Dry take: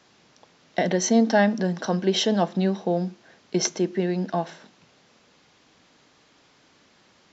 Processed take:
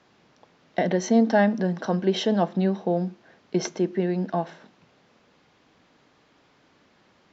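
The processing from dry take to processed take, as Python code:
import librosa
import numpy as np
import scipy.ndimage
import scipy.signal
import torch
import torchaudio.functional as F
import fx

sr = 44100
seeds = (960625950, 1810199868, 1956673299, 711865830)

y = fx.lowpass(x, sr, hz=2200.0, slope=6)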